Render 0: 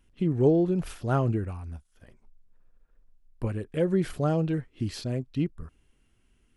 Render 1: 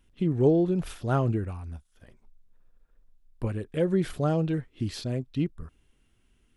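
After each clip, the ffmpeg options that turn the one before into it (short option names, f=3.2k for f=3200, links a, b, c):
-af "equalizer=f=3.6k:t=o:w=0.22:g=4.5"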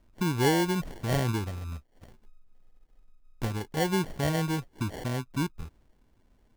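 -filter_complex "[0:a]asplit=2[a][b];[b]acompressor=threshold=-34dB:ratio=6,volume=1dB[c];[a][c]amix=inputs=2:normalize=0,acrusher=samples=35:mix=1:aa=0.000001,volume=-4.5dB"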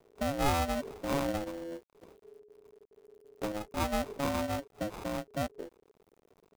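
-af "acrusher=bits=9:mix=0:aa=0.000001,aeval=exprs='val(0)*sin(2*PI*420*n/s)':c=same,volume=-1.5dB"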